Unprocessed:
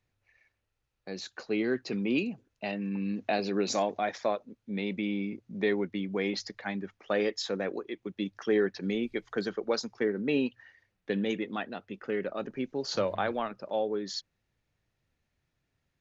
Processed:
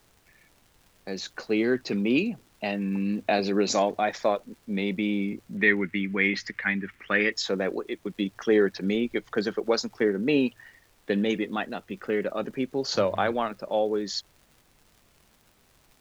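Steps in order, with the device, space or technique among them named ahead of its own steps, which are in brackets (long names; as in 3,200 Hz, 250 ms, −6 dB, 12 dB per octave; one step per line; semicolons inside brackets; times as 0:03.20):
vinyl LP (tape wow and flutter 23 cents; surface crackle 130 per second −51 dBFS; pink noise bed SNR 35 dB)
0:05.57–0:07.32: drawn EQ curve 260 Hz 0 dB, 700 Hz −10 dB, 2,000 Hz +11 dB, 4,000 Hz −5 dB
level +5 dB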